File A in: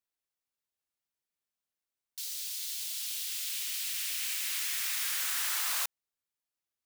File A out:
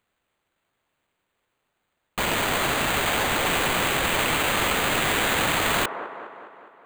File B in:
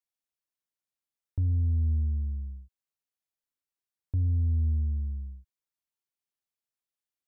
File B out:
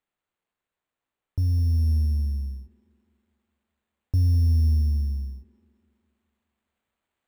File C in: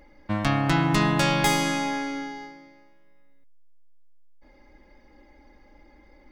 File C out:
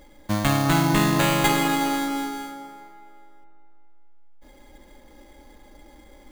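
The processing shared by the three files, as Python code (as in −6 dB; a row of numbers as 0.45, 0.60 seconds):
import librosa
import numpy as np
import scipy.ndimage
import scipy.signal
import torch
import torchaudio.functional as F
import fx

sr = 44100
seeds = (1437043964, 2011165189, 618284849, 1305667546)

p1 = fx.rider(x, sr, range_db=3, speed_s=2.0)
p2 = fx.sample_hold(p1, sr, seeds[0], rate_hz=5400.0, jitter_pct=0)
p3 = p2 + fx.echo_wet_bandpass(p2, sr, ms=206, feedback_pct=58, hz=670.0, wet_db=-7.0, dry=0)
y = p3 * 10.0 ** (-26 / 20.0) / np.sqrt(np.mean(np.square(p3)))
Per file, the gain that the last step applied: +11.0, +4.5, +1.5 decibels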